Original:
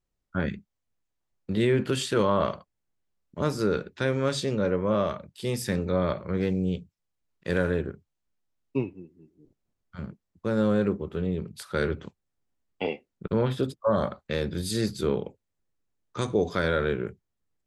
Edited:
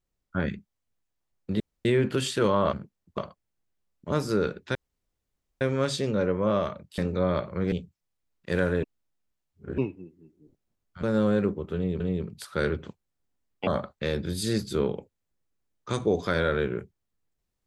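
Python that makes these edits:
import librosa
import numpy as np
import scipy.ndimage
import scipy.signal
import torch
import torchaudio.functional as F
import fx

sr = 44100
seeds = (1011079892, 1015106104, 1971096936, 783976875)

y = fx.edit(x, sr, fx.insert_room_tone(at_s=1.6, length_s=0.25),
    fx.insert_room_tone(at_s=4.05, length_s=0.86),
    fx.cut(start_s=5.42, length_s=0.29),
    fx.cut(start_s=6.45, length_s=0.25),
    fx.reverse_span(start_s=7.81, length_s=0.95),
    fx.move(start_s=10.01, length_s=0.45, to_s=2.48),
    fx.repeat(start_s=11.18, length_s=0.25, count=2),
    fx.cut(start_s=12.85, length_s=1.1), tone=tone)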